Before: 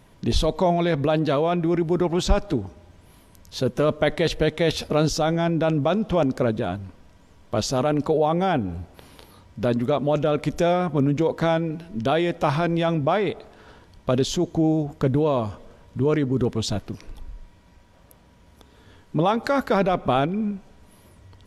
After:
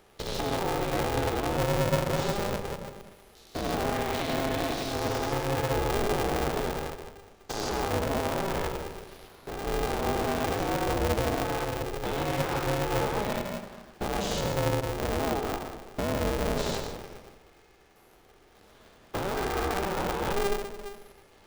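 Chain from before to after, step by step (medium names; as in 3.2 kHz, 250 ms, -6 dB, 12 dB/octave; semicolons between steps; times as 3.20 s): spectrogram pixelated in time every 200 ms; high-pass 180 Hz 24 dB/octave; peak limiter -21.5 dBFS, peak gain reduction 10.5 dB; comb of notches 860 Hz; reverberation RT60 1.1 s, pre-delay 100 ms, DRR 4 dB; polarity switched at an audio rate 200 Hz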